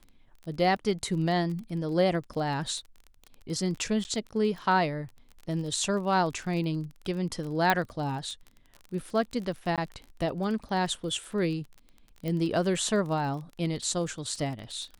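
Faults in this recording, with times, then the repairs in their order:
surface crackle 25 per second −36 dBFS
0:04.04–0:04.05: drop-out 9.9 ms
0:07.70: click −9 dBFS
0:09.76–0:09.78: drop-out 17 ms
0:12.28: click −21 dBFS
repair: click removal
repair the gap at 0:04.04, 9.9 ms
repair the gap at 0:09.76, 17 ms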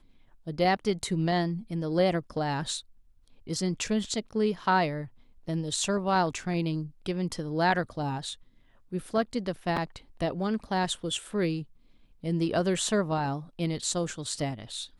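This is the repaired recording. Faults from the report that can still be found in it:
none of them is left

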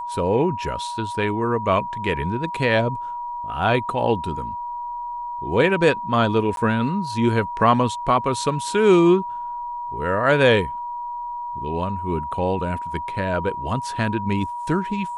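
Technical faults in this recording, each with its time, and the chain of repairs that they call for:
whistle 960 Hz −27 dBFS
0:06.56–0:06.57: drop-out 12 ms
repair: notch filter 960 Hz, Q 30
repair the gap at 0:06.56, 12 ms

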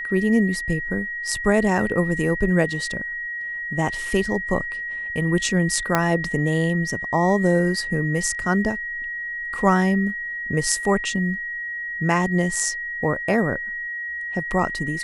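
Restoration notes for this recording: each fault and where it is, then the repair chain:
whistle 1,900 Hz −27 dBFS
0:05.95: click −4 dBFS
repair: click removal
notch filter 1,900 Hz, Q 30

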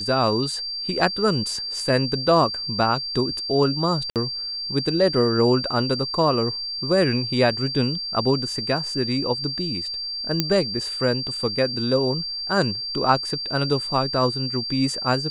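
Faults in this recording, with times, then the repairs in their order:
whistle 4,700 Hz −27 dBFS
0:04.10–0:04.16: drop-out 58 ms
0:10.40: click −5 dBFS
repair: click removal
notch filter 4,700 Hz, Q 30
repair the gap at 0:04.10, 58 ms

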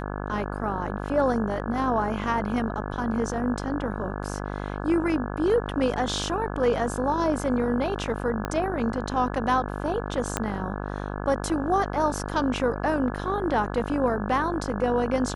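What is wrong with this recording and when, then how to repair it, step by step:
mains buzz 50 Hz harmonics 34 −32 dBFS
0:08.45: click −14 dBFS
0:10.37: click −9 dBFS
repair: click removal
hum removal 50 Hz, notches 34

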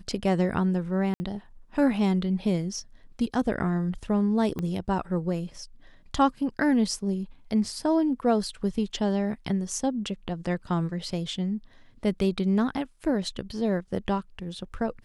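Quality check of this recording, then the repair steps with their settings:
0:01.14–0:01.20: drop-out 60 ms
0:04.59: click −19 dBFS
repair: click removal
repair the gap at 0:01.14, 60 ms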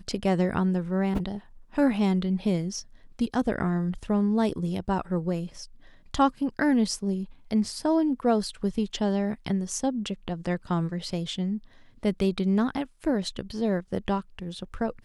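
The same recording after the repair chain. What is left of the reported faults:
0:04.59: click

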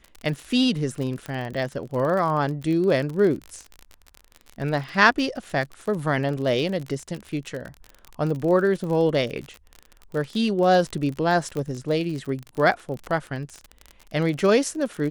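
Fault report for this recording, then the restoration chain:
surface crackle 41 per second −29 dBFS
0:01.26: click −18 dBFS
0:11.57: click −18 dBFS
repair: click removal

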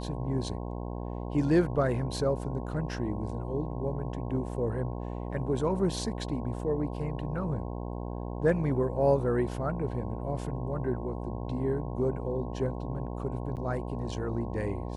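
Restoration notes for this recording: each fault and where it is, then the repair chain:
mains buzz 60 Hz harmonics 18 −36 dBFS
0:13.56–0:13.57: drop-out 8.6 ms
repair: hum removal 60 Hz, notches 18
repair the gap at 0:13.56, 8.6 ms

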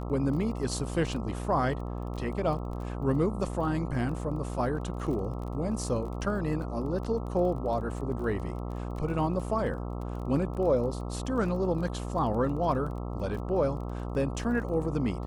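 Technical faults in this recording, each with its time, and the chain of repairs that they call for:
mains buzz 60 Hz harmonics 22 −35 dBFS
surface crackle 22 per second −38 dBFS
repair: click removal
hum removal 60 Hz, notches 22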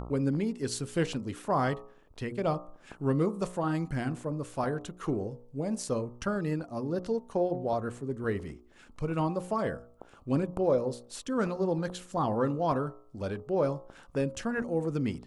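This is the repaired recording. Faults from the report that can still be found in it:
none of them is left

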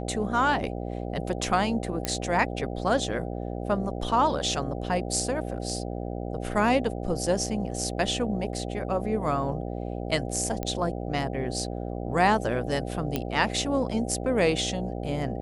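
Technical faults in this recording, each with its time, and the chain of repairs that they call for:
mains buzz 60 Hz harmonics 13 −33 dBFS
0:02.05: click −11 dBFS
0:10.63: click −16 dBFS
0:13.16: click −12 dBFS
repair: click removal
hum removal 60 Hz, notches 13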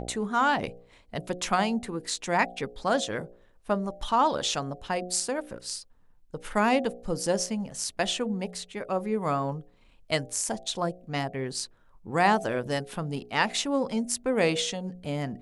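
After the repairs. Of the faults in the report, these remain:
none of them is left

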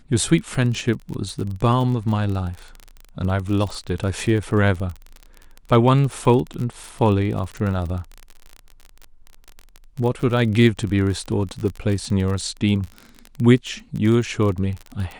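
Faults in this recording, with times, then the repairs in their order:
surface crackle 33 per second −26 dBFS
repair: click removal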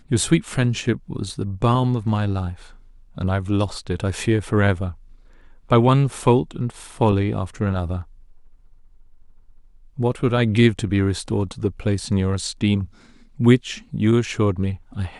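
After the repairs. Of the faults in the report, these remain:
none of them is left

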